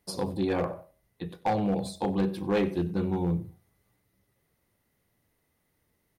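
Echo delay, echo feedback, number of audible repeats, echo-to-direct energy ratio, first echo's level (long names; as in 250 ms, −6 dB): 93 ms, 30%, 2, −20.0 dB, −20.5 dB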